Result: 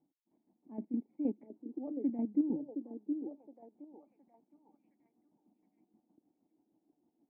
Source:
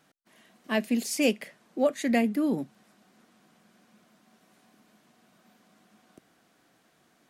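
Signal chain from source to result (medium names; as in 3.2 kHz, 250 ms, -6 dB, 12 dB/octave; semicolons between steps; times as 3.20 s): square tremolo 6.4 Hz, depth 65%, duty 40%; cascade formant filter u; repeats whose band climbs or falls 717 ms, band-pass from 410 Hz, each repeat 0.7 oct, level -3 dB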